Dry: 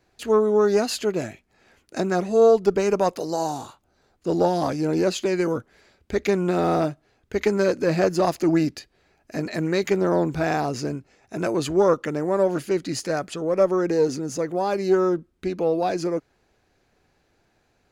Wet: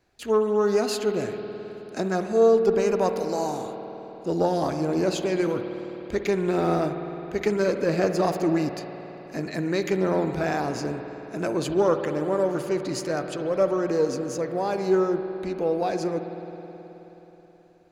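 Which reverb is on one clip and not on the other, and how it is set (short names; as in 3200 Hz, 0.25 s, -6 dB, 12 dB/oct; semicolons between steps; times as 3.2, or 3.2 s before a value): spring tank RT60 3.9 s, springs 53 ms, chirp 25 ms, DRR 6.5 dB; gain -3 dB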